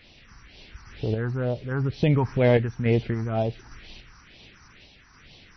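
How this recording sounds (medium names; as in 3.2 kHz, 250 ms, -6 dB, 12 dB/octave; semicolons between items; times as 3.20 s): a quantiser's noise floor 8-bit, dither triangular; phasing stages 4, 2.1 Hz, lowest notch 540–1400 Hz; random-step tremolo; MP3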